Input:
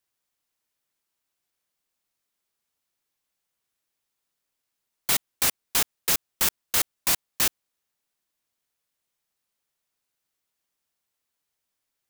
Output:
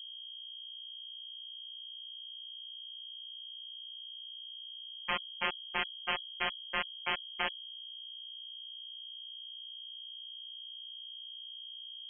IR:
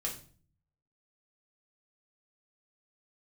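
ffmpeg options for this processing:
-af "afftfilt=real='hypot(re,im)*cos(PI*b)':imag='0':win_size=1024:overlap=0.75,aeval=exprs='val(0)+0.00447*(sin(2*PI*60*n/s)+sin(2*PI*2*60*n/s)/2+sin(2*PI*3*60*n/s)/3+sin(2*PI*4*60*n/s)/4+sin(2*PI*5*60*n/s)/5)':c=same,lowpass=f=2.8k:t=q:w=0.5098,lowpass=f=2.8k:t=q:w=0.6013,lowpass=f=2.8k:t=q:w=0.9,lowpass=f=2.8k:t=q:w=2.563,afreqshift=-3300,volume=1.5dB"

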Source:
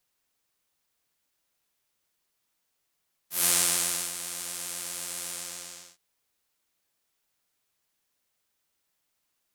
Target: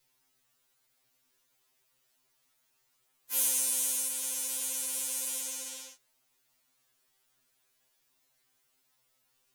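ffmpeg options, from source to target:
-filter_complex "[0:a]acrossover=split=310|7000[a][b][c];[a]acompressor=threshold=-58dB:ratio=4[d];[b]acompressor=threshold=-44dB:ratio=4[e];[c]acompressor=threshold=-30dB:ratio=4[f];[d][e][f]amix=inputs=3:normalize=0,afftfilt=real='re*2.45*eq(mod(b,6),0)':imag='im*2.45*eq(mod(b,6),0)':win_size=2048:overlap=0.75,volume=6.5dB"

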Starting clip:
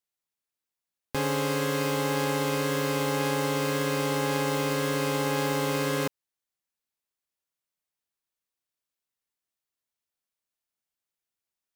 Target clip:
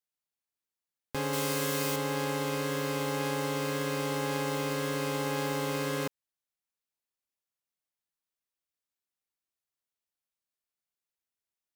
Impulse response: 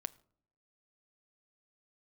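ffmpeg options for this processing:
-filter_complex "[0:a]asettb=1/sr,asplit=3[a][b][c];[a]atrim=end=1.334[d];[b]atrim=start=1.33:end=1.96,asetpts=PTS-STARTPTS,afade=t=in:d=0.004:c=qsin,afade=t=out:st=0.626:d=0.004:c=qsin,highshelf=f=4.8k:g=10[e];[c]atrim=start=1.956[f];[d][e]acrossfade=d=0.004:c1=hsin:c2=qsin[g];[g][f]acrossfade=d=0.004:c1=qsin:c2=hsin,volume=-4.5dB"

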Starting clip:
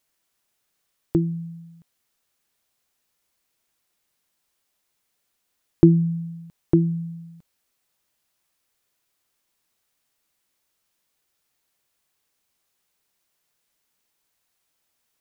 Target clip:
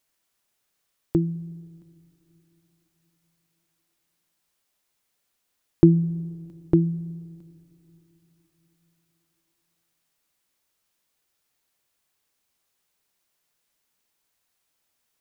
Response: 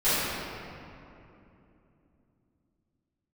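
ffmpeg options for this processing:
-filter_complex "[0:a]asplit=2[a][b];[1:a]atrim=start_sample=2205[c];[b][c]afir=irnorm=-1:irlink=0,volume=-40dB[d];[a][d]amix=inputs=2:normalize=0,volume=-1dB"

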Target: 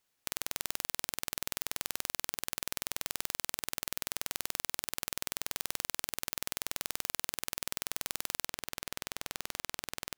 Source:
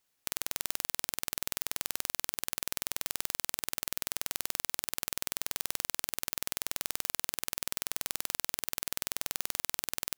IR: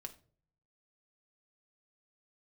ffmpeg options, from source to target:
-af "asetnsamples=n=441:p=0,asendcmd='8.46 highshelf g -10.5',highshelf=f=6.5k:g=-3"

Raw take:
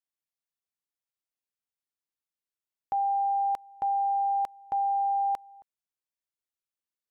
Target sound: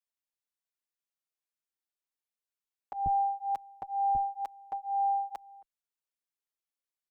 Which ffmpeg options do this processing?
-filter_complex "[0:a]asetnsamples=n=441:p=0,asendcmd='3.06 equalizer g 2;4.15 equalizer g -11.5',equalizer=f=110:t=o:w=1.7:g=-14.5,asplit=2[a][b];[b]adelay=6.3,afreqshift=-2.1[c];[a][c]amix=inputs=2:normalize=1"

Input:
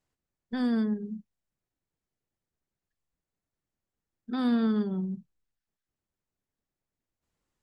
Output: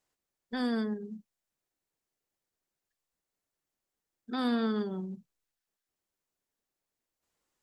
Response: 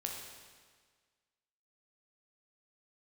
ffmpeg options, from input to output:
-af "bass=f=250:g=-11,treble=f=4k:g=3,volume=1.5dB"

